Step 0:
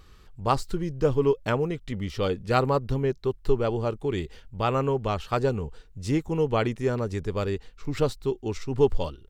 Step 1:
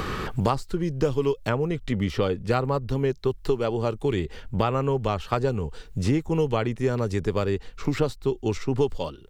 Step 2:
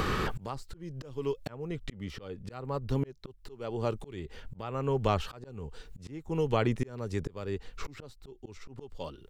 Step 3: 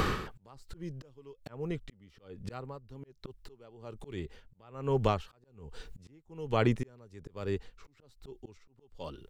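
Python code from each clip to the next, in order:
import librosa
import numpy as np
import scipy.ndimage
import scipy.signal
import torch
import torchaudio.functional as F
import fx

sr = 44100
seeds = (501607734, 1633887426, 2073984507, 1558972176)

y1 = fx.band_squash(x, sr, depth_pct=100)
y2 = fx.auto_swell(y1, sr, attack_ms=669.0)
y3 = y2 * 10.0 ** (-21 * (0.5 - 0.5 * np.cos(2.0 * np.pi * 1.2 * np.arange(len(y2)) / sr)) / 20.0)
y3 = F.gain(torch.from_numpy(y3), 2.0).numpy()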